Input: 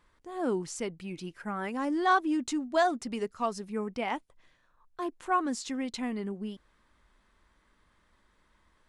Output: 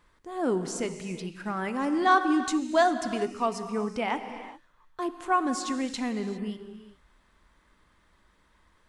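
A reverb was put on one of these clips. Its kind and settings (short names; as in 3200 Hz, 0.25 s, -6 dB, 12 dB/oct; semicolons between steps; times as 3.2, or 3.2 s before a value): non-linear reverb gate 0.43 s flat, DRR 8.5 dB; gain +3 dB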